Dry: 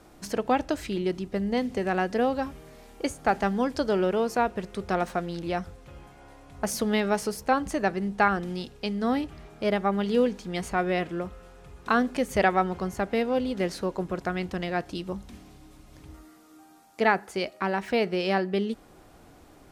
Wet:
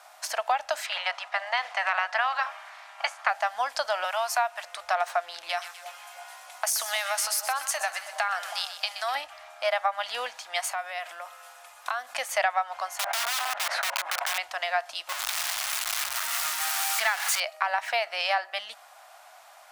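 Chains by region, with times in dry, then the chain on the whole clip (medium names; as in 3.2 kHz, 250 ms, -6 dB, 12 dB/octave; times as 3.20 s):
0.85–3.29 s: spectral peaks clipped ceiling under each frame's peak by 19 dB + band-pass filter 1.2 kHz, Q 0.74
4.04–4.64 s: high-pass 650 Hz 24 dB/octave + treble shelf 6.3 kHz +5.5 dB
5.49–9.15 s: tilt EQ +3 dB/octave + compression, threshold -28 dBFS + two-band feedback delay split 1 kHz, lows 321 ms, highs 125 ms, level -11 dB
10.64–12.14 s: high-pass 120 Hz 6 dB/octave + treble shelf 7.8 kHz +11.5 dB + compression, threshold -32 dBFS
12.99–14.38 s: three-band isolator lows -24 dB, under 300 Hz, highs -22 dB, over 2.5 kHz + integer overflow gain 30.5 dB + level flattener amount 100%
15.09–17.40 s: jump at every zero crossing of -23.5 dBFS + peaking EQ 650 Hz -12.5 dB 1.2 oct
whole clip: elliptic high-pass 650 Hz, stop band 40 dB; compression 6:1, threshold -29 dBFS; trim +7.5 dB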